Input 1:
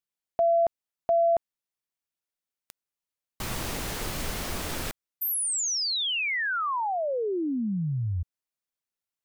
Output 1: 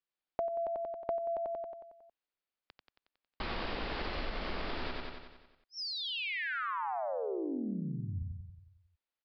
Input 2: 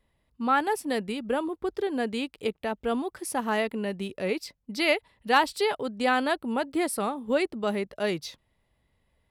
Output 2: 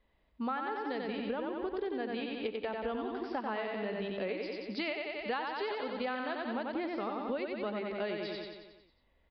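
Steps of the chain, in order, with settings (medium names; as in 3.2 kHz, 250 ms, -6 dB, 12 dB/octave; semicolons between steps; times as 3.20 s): peaking EQ 120 Hz -13.5 dB 0.95 oct; resampled via 11.025 kHz; feedback delay 91 ms, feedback 58%, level -4 dB; compression 10:1, threshold -32 dBFS; distance through air 120 m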